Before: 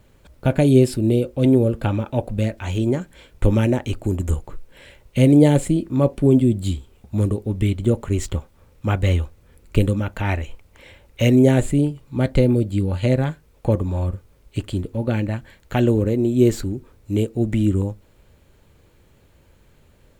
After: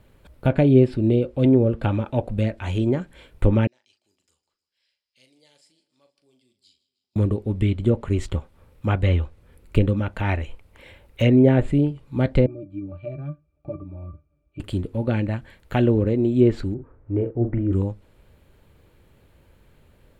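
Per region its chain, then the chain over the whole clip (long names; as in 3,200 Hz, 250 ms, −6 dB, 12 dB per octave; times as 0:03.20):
0:03.67–0:07.16: resonant band-pass 5,000 Hz, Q 15 + double-tracking delay 39 ms −9 dB + repeating echo 155 ms, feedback 57%, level −19 dB
0:12.46–0:14.60: low-shelf EQ 180 Hz −7 dB + resonances in every octave D, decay 0.12 s
0:16.74–0:17.73: low-pass filter 1,600 Hz 24 dB per octave + parametric band 210 Hz −12 dB 0.24 octaves + double-tracking delay 42 ms −7.5 dB
whole clip: treble cut that deepens with the level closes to 2,500 Hz, closed at −11 dBFS; parametric band 6,400 Hz −7.5 dB 0.81 octaves; level −1 dB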